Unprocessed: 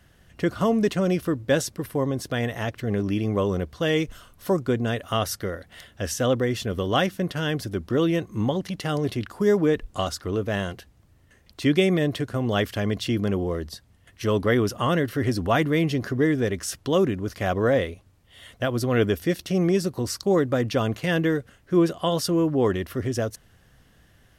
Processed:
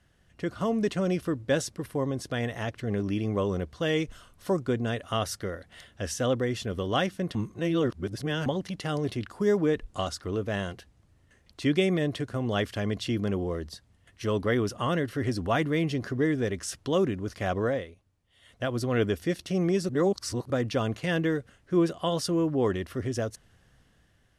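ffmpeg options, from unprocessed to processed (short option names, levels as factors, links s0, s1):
-filter_complex "[0:a]asplit=7[s0][s1][s2][s3][s4][s5][s6];[s0]atrim=end=7.352[s7];[s1]atrim=start=7.348:end=8.462,asetpts=PTS-STARTPTS,areverse[s8];[s2]atrim=start=8.458:end=17.85,asetpts=PTS-STARTPTS,afade=t=out:st=9.132:d=0.26:silence=0.334965[s9];[s3]atrim=start=17.85:end=18.41,asetpts=PTS-STARTPTS,volume=0.335[s10];[s4]atrim=start=18.41:end=19.892,asetpts=PTS-STARTPTS,afade=t=in:d=0.26:silence=0.334965[s11];[s5]atrim=start=19.888:end=20.502,asetpts=PTS-STARTPTS,areverse[s12];[s6]atrim=start=20.498[s13];[s7][s8]acrossfade=d=0.004:c1=hsin:c2=hsin[s14];[s9][s10][s11]concat=n=3:v=0:a=1[s15];[s14][s15]acrossfade=d=0.004:c1=hsin:c2=hsin[s16];[s16][s12]acrossfade=d=0.004:c1=hsin:c2=hsin[s17];[s17][s13]acrossfade=d=0.004:c1=hsin:c2=hsin,lowpass=f=11000:w=0.5412,lowpass=f=11000:w=1.3066,dynaudnorm=f=150:g=9:m=1.68,volume=0.376"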